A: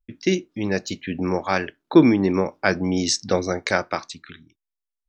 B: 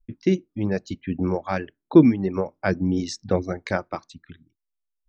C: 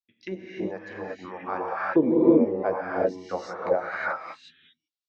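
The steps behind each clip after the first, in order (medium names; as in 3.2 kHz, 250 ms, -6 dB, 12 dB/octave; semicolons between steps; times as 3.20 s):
reverb removal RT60 1.3 s; tilt EQ -3 dB/octave; trim -4.5 dB
gated-style reverb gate 390 ms rising, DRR -5.5 dB; auto-wah 510–4100 Hz, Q 2.3, down, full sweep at -12.5 dBFS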